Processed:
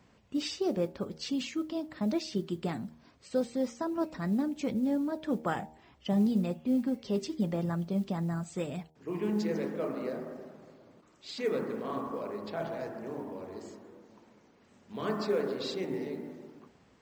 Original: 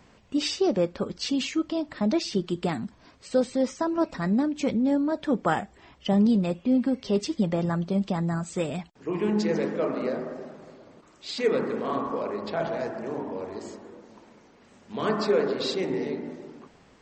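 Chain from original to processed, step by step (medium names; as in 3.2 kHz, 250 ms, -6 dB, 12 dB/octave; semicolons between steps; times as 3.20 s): high-pass 53 Hz; bass shelf 320 Hz +4 dB; de-hum 78.11 Hz, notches 12; modulation noise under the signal 34 dB; trim -8 dB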